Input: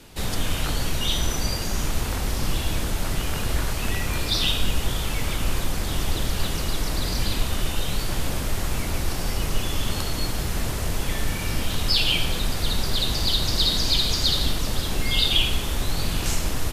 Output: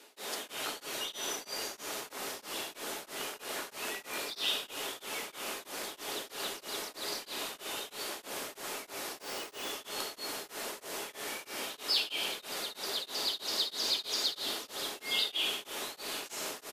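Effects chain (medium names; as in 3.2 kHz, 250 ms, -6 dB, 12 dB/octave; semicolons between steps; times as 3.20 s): high-pass 340 Hz 24 dB/octave; in parallel at -10 dB: saturation -26 dBFS, distortion -9 dB; on the sum: frequency-shifting echo 180 ms, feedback 40%, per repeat -150 Hz, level -15 dB; on a send at -9 dB: reverberation RT60 0.45 s, pre-delay 5 ms; 9.21–9.71 s: on the sum: careless resampling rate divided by 2×, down filtered, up hold; tremolo of two beating tones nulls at 3.1 Hz; trim -8 dB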